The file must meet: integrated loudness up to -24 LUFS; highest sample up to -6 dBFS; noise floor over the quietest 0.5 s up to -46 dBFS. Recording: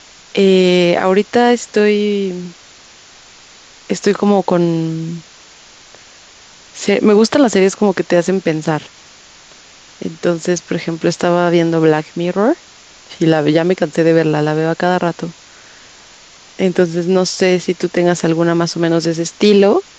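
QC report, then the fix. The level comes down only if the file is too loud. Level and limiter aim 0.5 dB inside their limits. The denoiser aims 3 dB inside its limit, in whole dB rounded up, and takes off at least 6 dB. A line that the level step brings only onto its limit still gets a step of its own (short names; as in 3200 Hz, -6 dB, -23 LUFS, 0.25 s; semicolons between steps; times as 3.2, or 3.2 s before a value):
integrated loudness -14.5 LUFS: fail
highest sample -1.5 dBFS: fail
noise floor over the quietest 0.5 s -42 dBFS: fail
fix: gain -10 dB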